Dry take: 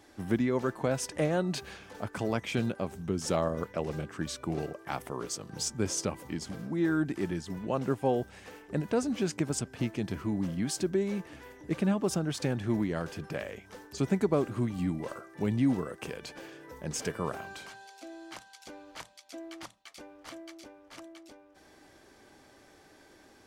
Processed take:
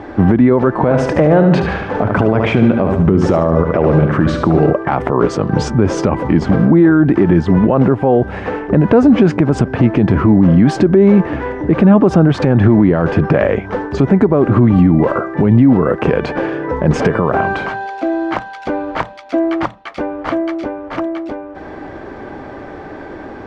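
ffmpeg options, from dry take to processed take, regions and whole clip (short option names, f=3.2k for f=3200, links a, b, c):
-filter_complex "[0:a]asettb=1/sr,asplit=3[a][b][c];[a]atrim=end=0.804[d];[b]atrim=start=0.8:end=4.7,asetpts=PTS-STARTPTS,afade=t=in:d=0.004:c=qsin,afade=t=out:st=3.896:d=0.004:c=qsin,acompressor=threshold=-36dB:ratio=2:attack=3.2:release=140:knee=1:detection=peak,aecho=1:1:73|146|219|292|365|438:0.398|0.195|0.0956|0.0468|0.023|0.0112,atrim=end_sample=171990[e];[c]atrim=start=4.696[f];[d][e]acrossfade=d=0.004:c1=hsin:c2=qsin[g];[g][f]acrossfade=d=0.004:c1=qsin:c2=hsin,lowpass=1.4k,acompressor=threshold=-29dB:ratio=6,alimiter=level_in=30dB:limit=-1dB:release=50:level=0:latency=1,volume=-1dB"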